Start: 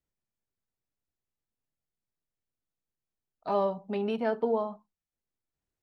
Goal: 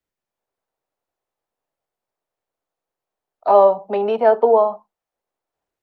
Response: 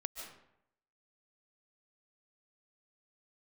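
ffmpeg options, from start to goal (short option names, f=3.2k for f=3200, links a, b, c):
-filter_complex "[0:a]bass=f=250:g=-9,treble=f=4k:g=-5,acrossover=split=210|530|910[a][b][c][d];[c]dynaudnorm=f=120:g=5:m=15dB[e];[a][b][e][d]amix=inputs=4:normalize=0,volume=6.5dB"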